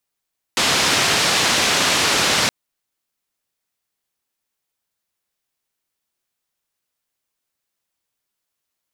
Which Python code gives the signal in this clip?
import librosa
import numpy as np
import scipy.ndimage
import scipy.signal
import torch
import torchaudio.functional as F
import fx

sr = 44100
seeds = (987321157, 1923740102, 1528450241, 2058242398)

y = fx.band_noise(sr, seeds[0], length_s=1.92, low_hz=98.0, high_hz=5200.0, level_db=-17.5)